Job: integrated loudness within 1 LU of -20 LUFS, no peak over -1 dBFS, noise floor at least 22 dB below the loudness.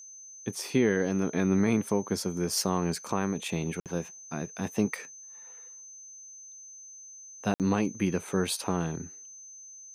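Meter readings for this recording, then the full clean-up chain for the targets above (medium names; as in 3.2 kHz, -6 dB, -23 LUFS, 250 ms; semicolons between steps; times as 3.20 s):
dropouts 2; longest dropout 58 ms; steady tone 6.2 kHz; tone level -45 dBFS; loudness -29.5 LUFS; peak level -14.0 dBFS; loudness target -20.0 LUFS
-> interpolate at 3.80/7.54 s, 58 ms; band-stop 6.2 kHz, Q 30; trim +9.5 dB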